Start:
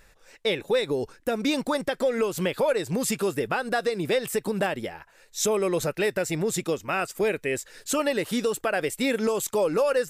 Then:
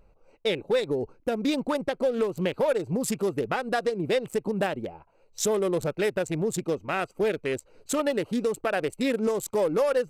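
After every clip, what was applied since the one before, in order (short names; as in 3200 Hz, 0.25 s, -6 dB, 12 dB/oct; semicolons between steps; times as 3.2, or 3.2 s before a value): Wiener smoothing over 25 samples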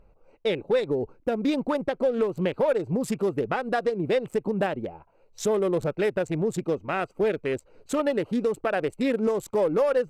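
high shelf 3800 Hz -11 dB; gain +1.5 dB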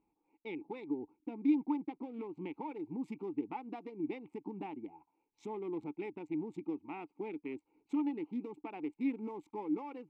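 vowel filter u; gain -1.5 dB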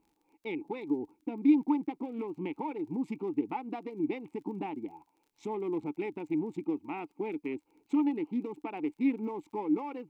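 crackle 30/s -61 dBFS; gain +6 dB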